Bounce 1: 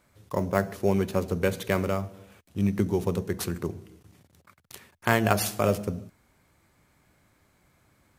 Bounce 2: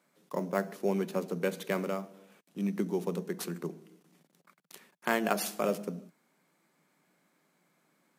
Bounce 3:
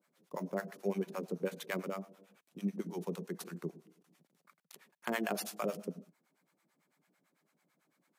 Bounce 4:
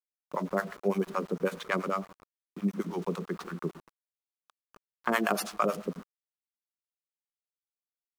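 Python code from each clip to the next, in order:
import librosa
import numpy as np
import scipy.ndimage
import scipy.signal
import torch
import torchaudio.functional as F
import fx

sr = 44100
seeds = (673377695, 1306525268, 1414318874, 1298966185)

y1 = scipy.signal.sosfilt(scipy.signal.ellip(4, 1.0, 40, 160.0, 'highpass', fs=sr, output='sos'), x)
y1 = F.gain(torch.from_numpy(y1), -5.0).numpy()
y2 = fx.harmonic_tremolo(y1, sr, hz=9.0, depth_pct=100, crossover_hz=630.0)
y2 = F.gain(torch.from_numpy(y2), -1.0).numpy()
y3 = fx.env_lowpass(y2, sr, base_hz=1100.0, full_db=-31.5)
y3 = np.where(np.abs(y3) >= 10.0 ** (-53.5 / 20.0), y3, 0.0)
y3 = fx.peak_eq(y3, sr, hz=1200.0, db=9.0, octaves=0.62)
y3 = F.gain(torch.from_numpy(y3), 6.0).numpy()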